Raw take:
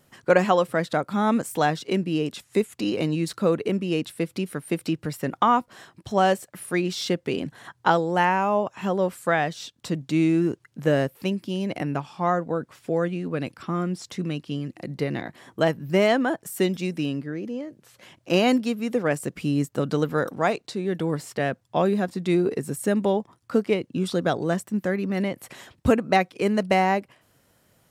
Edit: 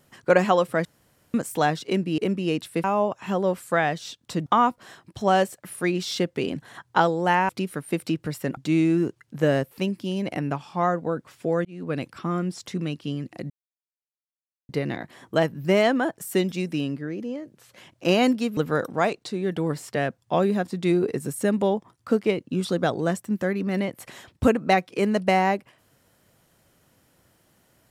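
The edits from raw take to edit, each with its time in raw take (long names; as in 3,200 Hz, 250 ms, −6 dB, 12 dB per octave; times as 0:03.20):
0:00.85–0:01.34: fill with room tone
0:02.18–0:03.62: remove
0:04.28–0:05.36: swap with 0:08.39–0:10.01
0:13.09–0:13.36: fade in
0:14.94: splice in silence 1.19 s
0:18.82–0:20.00: remove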